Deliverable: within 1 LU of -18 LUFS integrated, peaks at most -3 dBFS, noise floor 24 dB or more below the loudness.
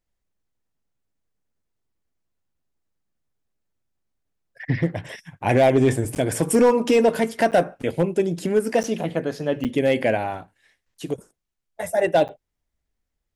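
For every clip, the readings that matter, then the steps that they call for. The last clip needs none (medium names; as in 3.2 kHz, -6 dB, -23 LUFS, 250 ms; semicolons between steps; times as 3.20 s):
clipped samples 0.7%; clipping level -10.0 dBFS; dropouts 5; longest dropout 8.9 ms; loudness -21.5 LUFS; peak level -10.0 dBFS; loudness target -18.0 LUFS
-> clip repair -10 dBFS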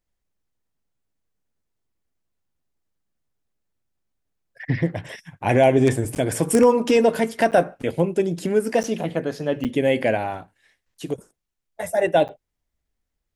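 clipped samples 0.0%; dropouts 5; longest dropout 8.9 ms
-> interpolate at 6.15/7.51/8.83/9.64/12.28 s, 8.9 ms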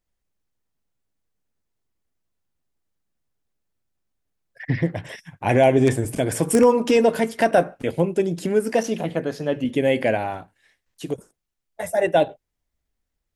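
dropouts 0; loudness -21.0 LUFS; peak level -1.0 dBFS; loudness target -18.0 LUFS
-> trim +3 dB; peak limiter -3 dBFS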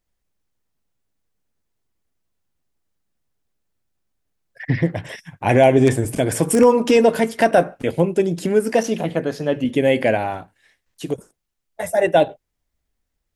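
loudness -18.0 LUFS; peak level -3.0 dBFS; noise floor -77 dBFS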